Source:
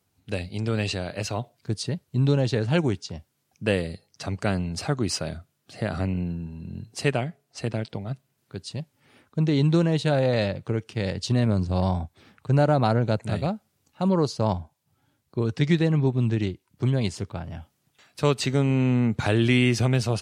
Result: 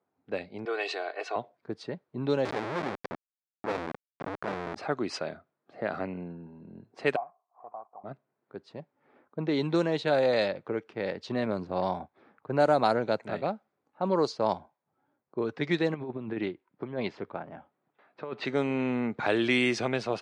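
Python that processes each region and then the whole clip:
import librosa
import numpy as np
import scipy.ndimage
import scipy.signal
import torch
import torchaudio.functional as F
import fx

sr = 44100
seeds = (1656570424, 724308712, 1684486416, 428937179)

y = fx.chain(x, sr, fx.highpass(hz=420.0, slope=24),
    fx.comb(ms=2.7, depth=0.78), at=(0.65, 1.36))
y = fx.chain(y, sr, fx.low_shelf(hz=64.0, db=10.0),
    fx.schmitt(flips_db=-28.0), at=(2.45, 4.76))
y = fx.chain(y, sr, fx.cvsd(bps=16000),
    fx.formant_cascade(vowel='a'),
    fx.peak_eq(hz=1200.0, db=10.0, octaves=1.2), at=(7.16, 8.04))
y = fx.chain(y, sr, fx.cheby1_lowpass(hz=3500.0, order=2),
    fx.peak_eq(hz=86.0, db=-7.5, octaves=0.21),
    fx.over_compress(threshold_db=-25.0, ratio=-0.5), at=(15.94, 18.45))
y = scipy.signal.sosfilt(scipy.signal.butter(2, 340.0, 'highpass', fs=sr, output='sos'), y)
y = fx.env_lowpass(y, sr, base_hz=1100.0, full_db=-17.0)
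y = fx.peak_eq(y, sr, hz=2900.0, db=-5.5, octaves=0.22)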